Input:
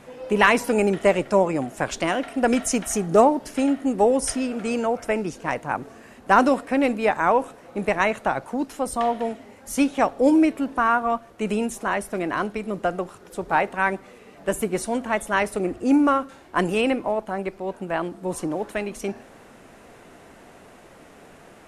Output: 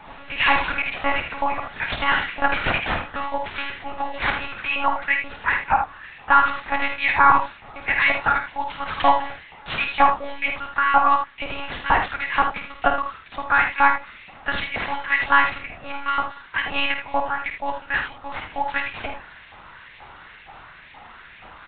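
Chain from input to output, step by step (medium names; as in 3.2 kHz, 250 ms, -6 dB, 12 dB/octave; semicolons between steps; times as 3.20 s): peak limiter -10.5 dBFS, peak gain reduction 9 dB; LFO high-pass saw up 2.1 Hz 800–2500 Hz; careless resampling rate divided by 6×, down none, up zero stuff; monotone LPC vocoder at 8 kHz 280 Hz; early reflections 51 ms -7.5 dB, 78 ms -8.5 dB; trim +4 dB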